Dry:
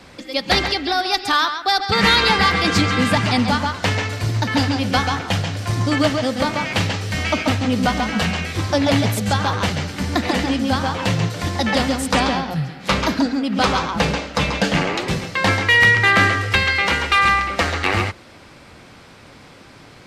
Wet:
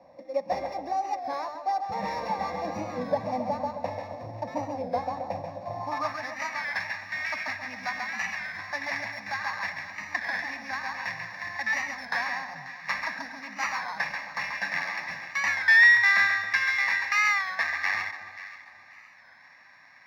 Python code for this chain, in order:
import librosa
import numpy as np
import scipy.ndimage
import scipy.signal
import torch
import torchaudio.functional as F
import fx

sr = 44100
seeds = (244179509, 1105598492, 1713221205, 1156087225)

p1 = np.r_[np.sort(x[:len(x) // 8 * 8].reshape(-1, 8), axis=1).ravel(), x[len(x) // 8 * 8:]]
p2 = fx.fixed_phaser(p1, sr, hz=2100.0, stages=8)
p3 = 10.0 ** (-21.0 / 20.0) * np.tanh(p2 / 10.0 ** (-21.0 / 20.0))
p4 = p2 + (p3 * librosa.db_to_amplitude(-7.0))
p5 = fx.filter_sweep_bandpass(p4, sr, from_hz=540.0, to_hz=1700.0, start_s=5.62, end_s=6.25, q=4.3)
p6 = p5 + fx.echo_alternate(p5, sr, ms=267, hz=970.0, feedback_pct=53, wet_db=-9.0, dry=0)
p7 = fx.record_warp(p6, sr, rpm=33.33, depth_cents=100.0)
y = p7 * librosa.db_to_amplitude(3.0)